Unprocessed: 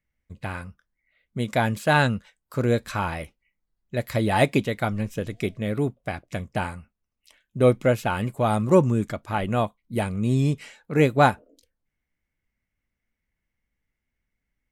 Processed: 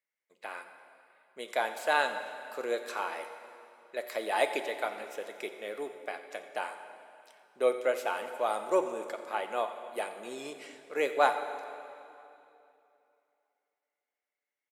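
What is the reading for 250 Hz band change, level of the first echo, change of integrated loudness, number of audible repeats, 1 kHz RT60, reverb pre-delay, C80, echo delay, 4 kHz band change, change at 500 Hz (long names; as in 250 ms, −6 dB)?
−19.5 dB, −17.0 dB, −9.0 dB, 1, 2.7 s, 8 ms, 9.5 dB, 88 ms, −6.0 dB, −7.0 dB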